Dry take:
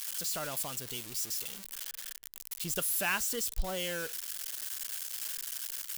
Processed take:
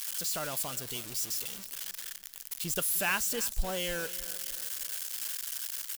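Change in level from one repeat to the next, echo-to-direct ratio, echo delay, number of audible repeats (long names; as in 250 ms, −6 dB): −7.0 dB, −15.5 dB, 307 ms, 3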